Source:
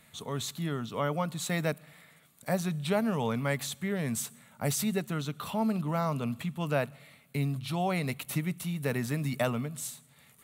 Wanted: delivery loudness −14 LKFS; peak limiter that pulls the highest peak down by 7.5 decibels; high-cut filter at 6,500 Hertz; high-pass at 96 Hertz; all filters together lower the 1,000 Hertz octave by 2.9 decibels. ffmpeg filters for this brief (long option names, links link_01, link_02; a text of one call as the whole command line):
ffmpeg -i in.wav -af "highpass=96,lowpass=6500,equalizer=frequency=1000:width_type=o:gain=-4,volume=20.5dB,alimiter=limit=-2.5dB:level=0:latency=1" out.wav